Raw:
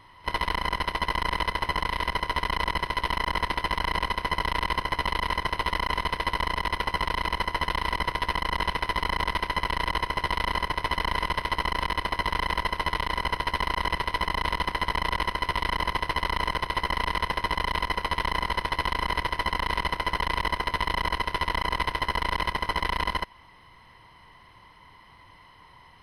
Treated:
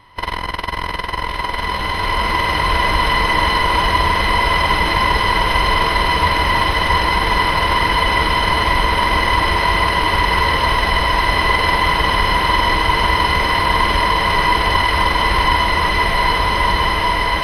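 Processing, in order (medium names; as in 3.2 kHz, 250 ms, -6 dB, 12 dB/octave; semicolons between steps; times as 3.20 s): time stretch by phase-locked vocoder 0.67×; swelling reverb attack 2340 ms, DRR -7.5 dB; trim +6 dB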